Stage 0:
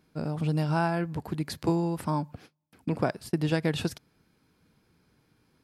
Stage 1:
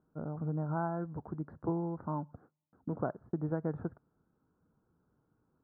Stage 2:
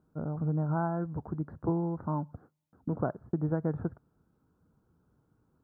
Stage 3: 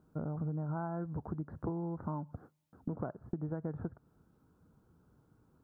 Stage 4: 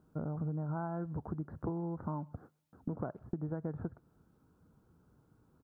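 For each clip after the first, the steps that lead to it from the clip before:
elliptic low-pass filter 1,400 Hz, stop band 50 dB; level −7 dB
parametric band 65 Hz +5.5 dB 2.6 octaves; level +2.5 dB
downward compressor 6 to 1, threshold −38 dBFS, peak gain reduction 12.5 dB; level +3 dB
far-end echo of a speakerphone 130 ms, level −28 dB

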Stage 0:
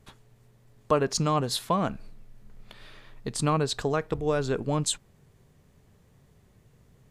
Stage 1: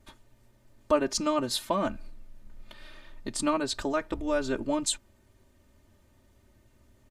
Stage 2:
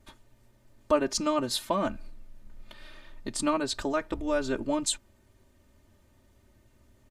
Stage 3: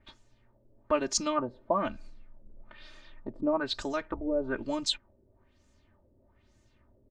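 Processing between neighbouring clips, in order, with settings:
comb filter 3.3 ms, depth 99%; level −3.5 dB
no processing that can be heard
auto-filter low-pass sine 1.1 Hz 450–7,000 Hz; level −4 dB

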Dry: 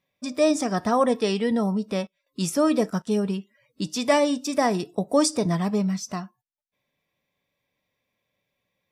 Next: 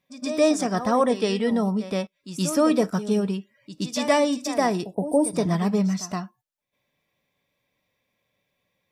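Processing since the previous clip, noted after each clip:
gain on a spectral selection 0:04.94–0:05.35, 1,000–8,300 Hz −27 dB
backwards echo 121 ms −12 dB
speech leveller within 4 dB 2 s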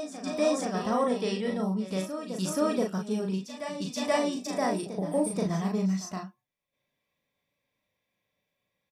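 double-tracking delay 37 ms −3 dB
backwards echo 479 ms −9.5 dB
level −8 dB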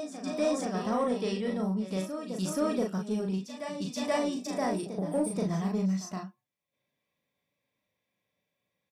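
high-pass filter 150 Hz 6 dB per octave
low-shelf EQ 320 Hz +6 dB
in parallel at −7 dB: soft clipping −26 dBFS, distortion −10 dB
on the sum: level −5.5 dB

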